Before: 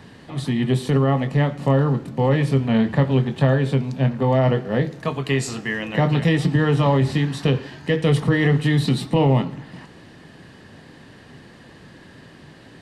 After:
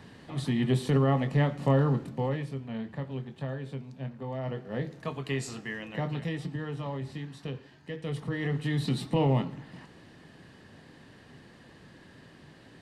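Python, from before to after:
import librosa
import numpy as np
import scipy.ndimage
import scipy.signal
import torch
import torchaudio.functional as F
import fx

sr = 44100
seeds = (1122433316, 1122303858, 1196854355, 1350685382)

y = fx.gain(x, sr, db=fx.line((2.04, -6.0), (2.54, -18.0), (4.36, -18.0), (4.92, -10.5), (5.57, -10.5), (6.72, -18.0), (7.94, -18.0), (9.04, -8.0)))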